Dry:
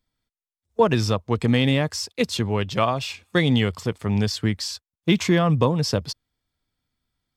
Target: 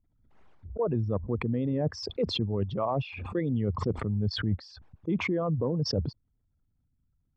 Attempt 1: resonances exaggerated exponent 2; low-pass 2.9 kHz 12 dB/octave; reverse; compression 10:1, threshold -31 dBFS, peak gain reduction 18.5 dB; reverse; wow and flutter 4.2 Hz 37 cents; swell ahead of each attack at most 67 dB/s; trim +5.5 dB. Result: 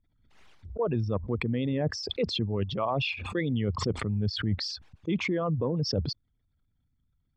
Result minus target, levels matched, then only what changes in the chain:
4 kHz band +3.0 dB
change: low-pass 1.1 kHz 12 dB/octave

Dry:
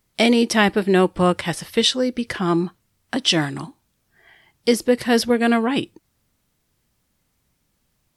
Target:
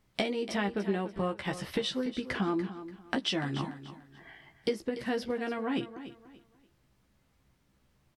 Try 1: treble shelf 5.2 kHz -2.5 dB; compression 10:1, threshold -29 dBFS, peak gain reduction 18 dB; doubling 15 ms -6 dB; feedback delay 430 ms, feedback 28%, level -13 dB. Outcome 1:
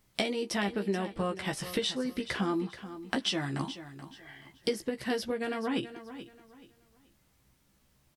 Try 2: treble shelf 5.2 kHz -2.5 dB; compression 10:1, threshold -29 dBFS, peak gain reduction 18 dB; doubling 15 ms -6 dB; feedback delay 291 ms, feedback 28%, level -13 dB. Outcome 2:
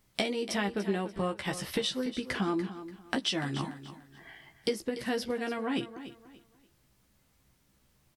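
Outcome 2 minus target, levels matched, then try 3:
8 kHz band +5.5 dB
treble shelf 5.2 kHz -13.5 dB; compression 10:1, threshold -29 dBFS, peak gain reduction 17.5 dB; doubling 15 ms -6 dB; feedback delay 291 ms, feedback 28%, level -13 dB

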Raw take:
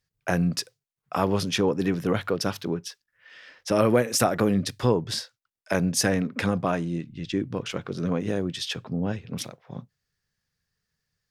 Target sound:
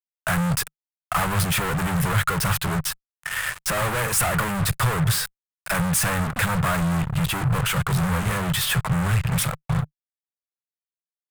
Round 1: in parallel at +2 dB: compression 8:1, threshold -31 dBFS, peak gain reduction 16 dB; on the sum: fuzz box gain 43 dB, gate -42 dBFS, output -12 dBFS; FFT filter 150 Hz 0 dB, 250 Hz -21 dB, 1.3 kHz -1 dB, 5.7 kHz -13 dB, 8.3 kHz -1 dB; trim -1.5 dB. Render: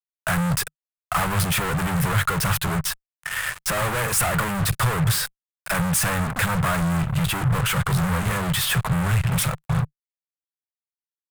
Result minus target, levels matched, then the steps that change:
compression: peak gain reduction -6.5 dB
change: compression 8:1, threshold -38.5 dBFS, peak gain reduction 22.5 dB

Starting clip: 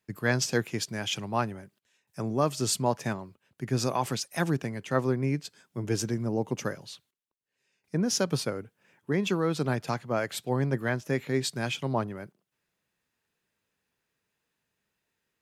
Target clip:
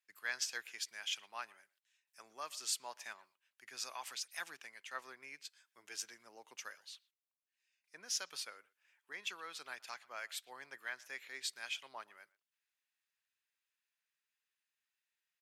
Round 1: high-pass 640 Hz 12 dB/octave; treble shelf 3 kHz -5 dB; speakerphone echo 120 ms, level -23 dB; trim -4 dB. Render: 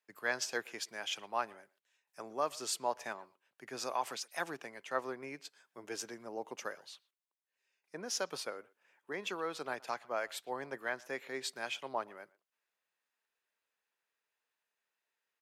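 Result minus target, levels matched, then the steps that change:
500 Hz band +13.0 dB
change: high-pass 1.9 kHz 12 dB/octave

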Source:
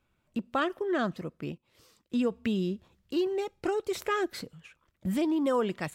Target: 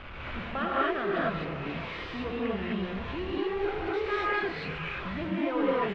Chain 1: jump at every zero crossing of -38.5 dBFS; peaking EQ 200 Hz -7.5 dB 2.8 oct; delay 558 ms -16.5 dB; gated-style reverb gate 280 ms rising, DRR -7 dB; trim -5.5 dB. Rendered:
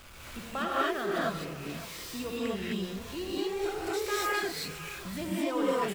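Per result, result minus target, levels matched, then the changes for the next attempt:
jump at every zero crossing: distortion -7 dB; 4 kHz band +4.5 dB
change: jump at every zero crossing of -29.5 dBFS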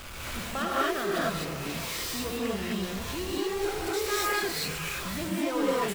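4 kHz band +6.5 dB
add after jump at every zero crossing: low-pass 2.9 kHz 24 dB/octave

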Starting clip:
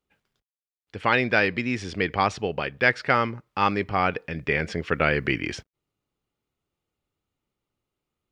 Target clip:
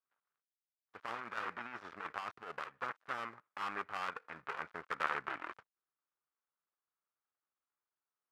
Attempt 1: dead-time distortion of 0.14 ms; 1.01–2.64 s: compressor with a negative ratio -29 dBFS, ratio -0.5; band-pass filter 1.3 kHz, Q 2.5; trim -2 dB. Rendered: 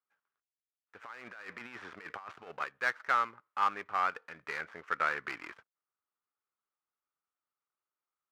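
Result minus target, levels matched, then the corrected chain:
dead-time distortion: distortion -10 dB
dead-time distortion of 0.37 ms; 1.01–2.64 s: compressor with a negative ratio -29 dBFS, ratio -0.5; band-pass filter 1.3 kHz, Q 2.5; trim -2 dB

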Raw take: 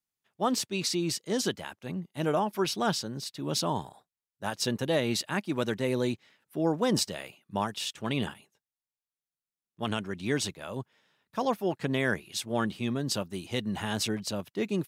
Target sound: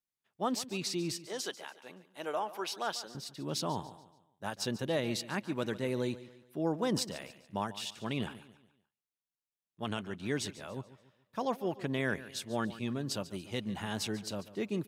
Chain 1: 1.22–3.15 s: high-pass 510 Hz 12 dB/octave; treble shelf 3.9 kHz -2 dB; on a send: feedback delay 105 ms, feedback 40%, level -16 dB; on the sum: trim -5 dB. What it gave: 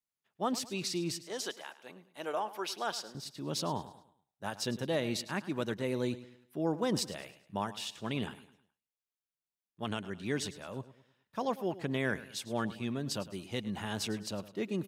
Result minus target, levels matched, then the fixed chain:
echo 38 ms early
1.22–3.15 s: high-pass 510 Hz 12 dB/octave; treble shelf 3.9 kHz -2 dB; on a send: feedback delay 143 ms, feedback 40%, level -16 dB; on the sum: trim -5 dB

